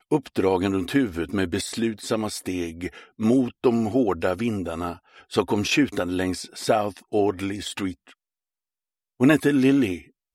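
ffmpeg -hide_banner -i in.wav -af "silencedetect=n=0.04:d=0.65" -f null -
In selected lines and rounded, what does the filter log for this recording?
silence_start: 7.92
silence_end: 9.21 | silence_duration: 1.29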